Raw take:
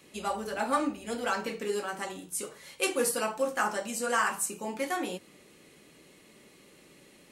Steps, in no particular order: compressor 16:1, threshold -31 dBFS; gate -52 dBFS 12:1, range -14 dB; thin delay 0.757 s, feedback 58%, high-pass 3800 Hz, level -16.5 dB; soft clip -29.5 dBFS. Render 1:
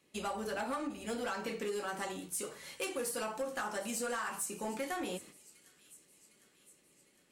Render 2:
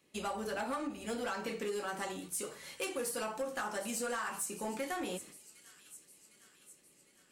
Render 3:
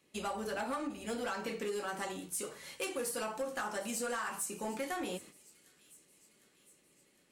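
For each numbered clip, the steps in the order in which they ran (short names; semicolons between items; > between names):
compressor > gate > thin delay > soft clip; gate > thin delay > compressor > soft clip; compressor > soft clip > gate > thin delay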